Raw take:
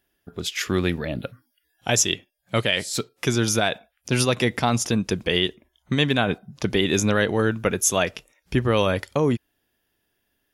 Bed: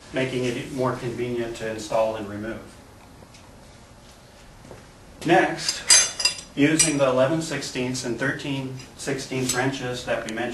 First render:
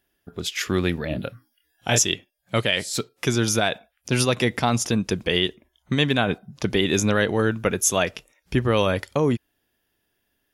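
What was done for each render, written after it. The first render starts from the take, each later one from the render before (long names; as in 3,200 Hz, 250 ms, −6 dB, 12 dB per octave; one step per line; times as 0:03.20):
0:01.08–0:01.99: double-tracking delay 26 ms −4 dB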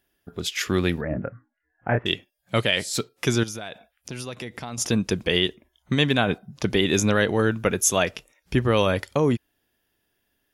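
0:01.01–0:02.06: Butterworth low-pass 2,000 Hz 48 dB per octave
0:03.43–0:04.78: downward compressor 3 to 1, threshold −35 dBFS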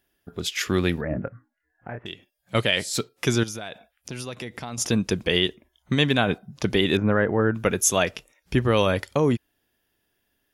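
0:01.27–0:02.55: downward compressor 2.5 to 1, threshold −37 dBFS
0:06.97–0:07.55: low-pass filter 1,800 Hz 24 dB per octave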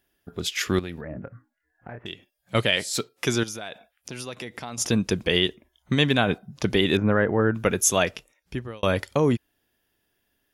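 0:00.79–0:02.05: downward compressor 2.5 to 1, threshold −35 dBFS
0:02.76–0:04.80: low-shelf EQ 170 Hz −7 dB
0:08.05–0:08.83: fade out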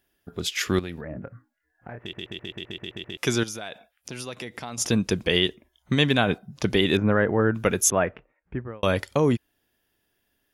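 0:02.00: stutter in place 0.13 s, 9 plays
0:07.90–0:08.83: low-pass filter 1,900 Hz 24 dB per octave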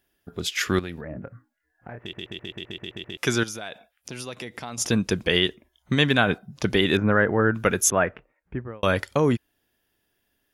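dynamic equaliser 1,500 Hz, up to +5 dB, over −39 dBFS, Q 1.9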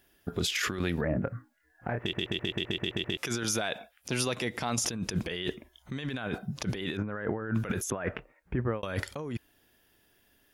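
compressor whose output falls as the input rises −31 dBFS, ratio −1
brickwall limiter −18 dBFS, peak gain reduction 10.5 dB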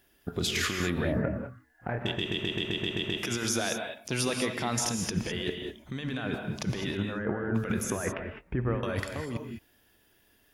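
reverb whose tail is shaped and stops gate 230 ms rising, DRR 4 dB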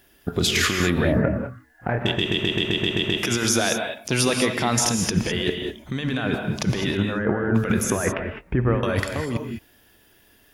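level +8.5 dB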